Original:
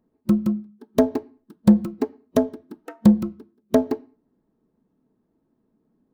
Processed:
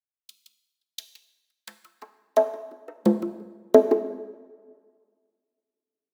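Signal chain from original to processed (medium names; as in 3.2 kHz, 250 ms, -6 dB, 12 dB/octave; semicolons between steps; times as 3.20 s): high-pass sweep 3.5 kHz -> 380 Hz, 1.03–2.96 s; plate-style reverb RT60 3.3 s, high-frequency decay 0.6×, DRR 9 dB; three bands expanded up and down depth 70%; trim -6.5 dB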